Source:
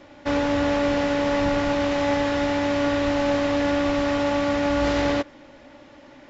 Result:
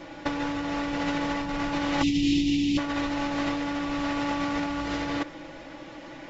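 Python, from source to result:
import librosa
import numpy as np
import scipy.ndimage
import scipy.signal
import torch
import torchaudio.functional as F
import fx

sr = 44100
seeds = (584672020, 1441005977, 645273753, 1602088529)

y = fx.rattle_buzz(x, sr, strikes_db=-29.0, level_db=-34.0)
y = fx.ellip_bandstop(y, sr, low_hz=320.0, high_hz=2700.0, order=3, stop_db=40, at=(2.01, 2.77), fade=0.02)
y = y + 0.64 * np.pad(y, (int(6.1 * sr / 1000.0), 0))[:len(y)]
y = fx.over_compress(y, sr, threshold_db=-26.0, ratio=-0.5)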